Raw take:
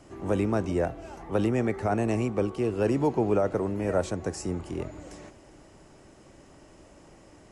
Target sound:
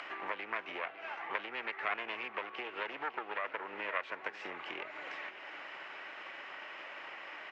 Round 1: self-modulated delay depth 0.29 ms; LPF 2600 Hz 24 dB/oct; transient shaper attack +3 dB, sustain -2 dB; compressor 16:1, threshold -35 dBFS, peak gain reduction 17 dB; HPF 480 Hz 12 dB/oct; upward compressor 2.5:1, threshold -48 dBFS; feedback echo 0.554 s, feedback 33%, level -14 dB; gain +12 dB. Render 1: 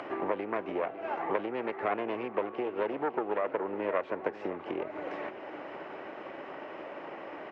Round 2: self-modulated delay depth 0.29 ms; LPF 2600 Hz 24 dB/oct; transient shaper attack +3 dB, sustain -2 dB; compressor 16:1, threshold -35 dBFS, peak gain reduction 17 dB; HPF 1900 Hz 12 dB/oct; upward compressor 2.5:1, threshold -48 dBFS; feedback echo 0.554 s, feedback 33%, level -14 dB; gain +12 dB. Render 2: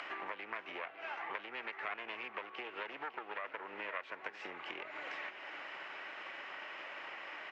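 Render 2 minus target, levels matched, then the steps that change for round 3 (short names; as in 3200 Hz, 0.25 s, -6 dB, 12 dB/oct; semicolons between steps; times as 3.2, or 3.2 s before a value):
compressor: peak gain reduction +6.5 dB
change: compressor 16:1, threshold -28 dBFS, peak gain reduction 10.5 dB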